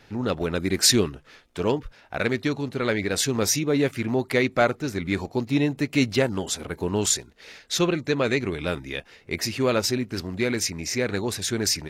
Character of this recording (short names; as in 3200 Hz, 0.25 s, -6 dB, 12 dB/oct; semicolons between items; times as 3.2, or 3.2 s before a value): noise floor -55 dBFS; spectral tilt -3.5 dB/oct